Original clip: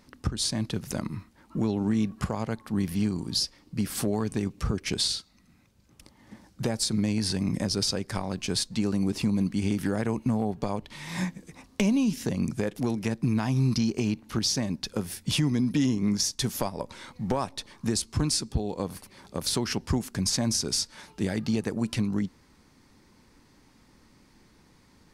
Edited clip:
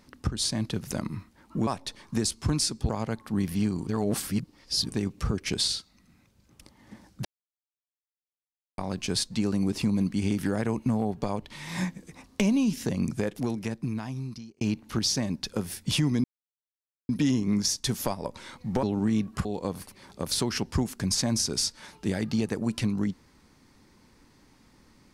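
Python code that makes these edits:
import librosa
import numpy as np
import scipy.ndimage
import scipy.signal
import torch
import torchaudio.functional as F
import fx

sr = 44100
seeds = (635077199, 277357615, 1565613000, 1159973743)

y = fx.edit(x, sr, fx.swap(start_s=1.67, length_s=0.62, other_s=17.38, other_length_s=1.22),
    fx.reverse_span(start_s=3.27, length_s=1.03),
    fx.silence(start_s=6.65, length_s=1.53),
    fx.fade_out_span(start_s=12.63, length_s=1.38),
    fx.insert_silence(at_s=15.64, length_s=0.85), tone=tone)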